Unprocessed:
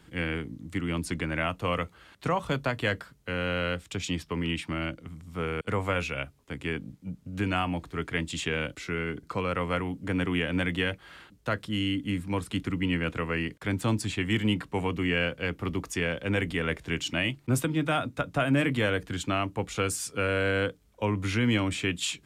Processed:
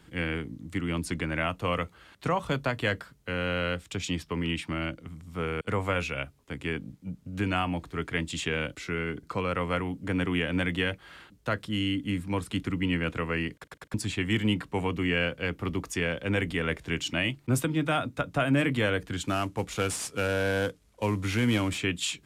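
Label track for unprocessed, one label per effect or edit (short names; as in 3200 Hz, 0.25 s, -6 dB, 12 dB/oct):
13.540000	13.540000	stutter in place 0.10 s, 4 plays
19.240000	21.780000	CVSD 64 kbps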